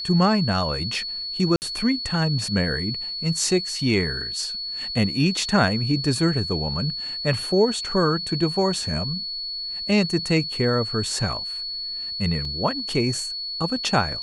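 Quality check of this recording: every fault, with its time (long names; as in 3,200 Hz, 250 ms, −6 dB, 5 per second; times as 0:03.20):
whistle 4,400 Hz −28 dBFS
0:01.56–0:01.62: drop-out 59 ms
0:12.45: drop-out 3 ms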